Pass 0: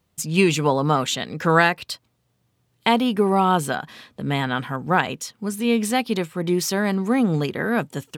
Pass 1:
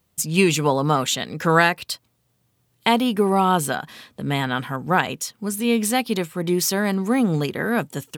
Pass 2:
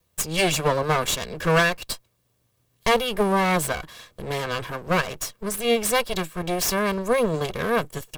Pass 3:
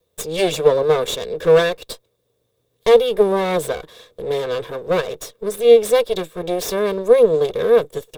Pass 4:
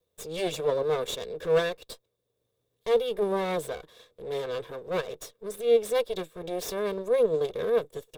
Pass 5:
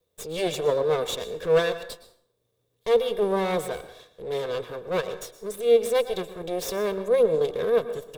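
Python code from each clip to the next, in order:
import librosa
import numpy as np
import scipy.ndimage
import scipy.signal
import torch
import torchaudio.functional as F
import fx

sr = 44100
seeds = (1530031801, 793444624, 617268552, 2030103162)

y1 = fx.high_shelf(x, sr, hz=8100.0, db=9.0)
y2 = fx.lower_of_two(y1, sr, delay_ms=1.8)
y3 = fx.small_body(y2, sr, hz=(460.0, 3600.0), ring_ms=25, db=17)
y3 = F.gain(torch.from_numpy(y3), -4.0).numpy()
y4 = fx.transient(y3, sr, attack_db=-7, sustain_db=-3)
y4 = F.gain(torch.from_numpy(y4), -8.5).numpy()
y5 = fx.rev_plate(y4, sr, seeds[0], rt60_s=0.63, hf_ratio=0.7, predelay_ms=100, drr_db=12.0)
y5 = F.gain(torch.from_numpy(y5), 3.0).numpy()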